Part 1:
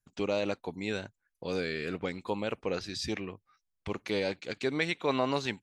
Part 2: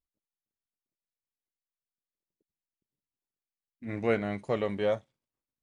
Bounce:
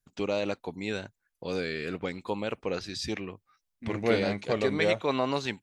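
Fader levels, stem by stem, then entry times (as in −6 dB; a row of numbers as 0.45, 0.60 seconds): +1.0, +1.0 decibels; 0.00, 0.00 seconds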